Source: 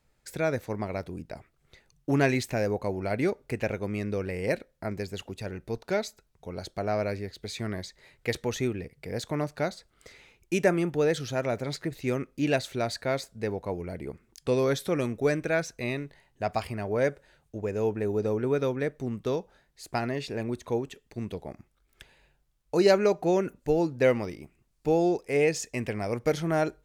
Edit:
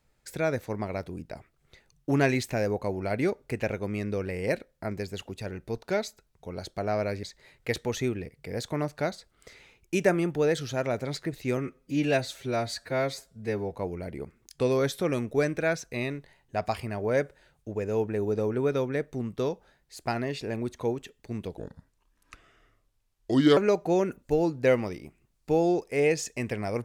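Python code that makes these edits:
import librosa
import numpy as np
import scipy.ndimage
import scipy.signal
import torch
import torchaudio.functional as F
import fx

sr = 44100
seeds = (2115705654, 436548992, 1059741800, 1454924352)

y = fx.edit(x, sr, fx.cut(start_s=7.23, length_s=0.59),
    fx.stretch_span(start_s=12.16, length_s=1.44, factor=1.5),
    fx.speed_span(start_s=21.44, length_s=1.5, speed=0.75), tone=tone)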